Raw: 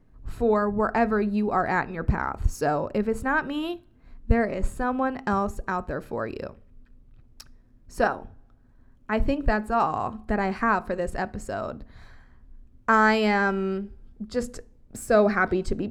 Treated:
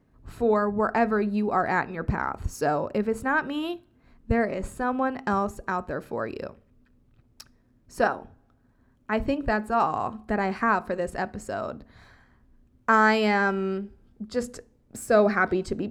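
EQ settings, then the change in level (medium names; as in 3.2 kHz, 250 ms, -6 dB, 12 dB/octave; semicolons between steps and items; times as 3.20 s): high-pass 110 Hz 6 dB/octave; 0.0 dB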